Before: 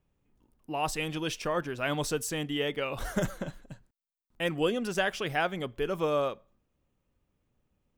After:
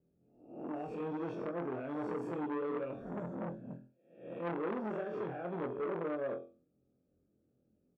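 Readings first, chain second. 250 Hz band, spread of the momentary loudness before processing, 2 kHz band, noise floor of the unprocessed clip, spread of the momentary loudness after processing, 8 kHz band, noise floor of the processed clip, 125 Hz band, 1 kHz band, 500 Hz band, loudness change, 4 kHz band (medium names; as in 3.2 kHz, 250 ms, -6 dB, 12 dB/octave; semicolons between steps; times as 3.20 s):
-4.0 dB, 6 LU, -15.5 dB, -79 dBFS, 11 LU, under -35 dB, -77 dBFS, -9.0 dB, -8.5 dB, -6.5 dB, -8.0 dB, under -25 dB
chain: reverse spectral sustain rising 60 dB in 0.59 s; tilt EQ -2.5 dB/octave; delay 108 ms -20 dB; reverse; compression 6:1, threshold -28 dBFS, peak gain reduction 11.5 dB; reverse; high-pass 260 Hz 12 dB/octave; peak limiter -25.5 dBFS, peak gain reduction 5.5 dB; boxcar filter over 44 samples; on a send: flutter echo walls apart 4 m, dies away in 0.34 s; on the sum: transformer saturation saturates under 990 Hz; trim +1 dB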